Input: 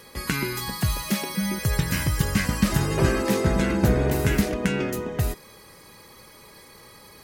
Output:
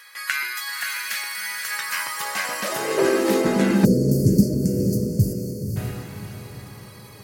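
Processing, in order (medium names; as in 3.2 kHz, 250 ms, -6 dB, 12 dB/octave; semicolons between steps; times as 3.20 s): high-pass sweep 1.6 kHz -> 110 Hz, 1.61–4.38 s; echo that smears into a reverb 554 ms, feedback 41%, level -5 dB; time-frequency box 3.85–5.76 s, 620–4300 Hz -29 dB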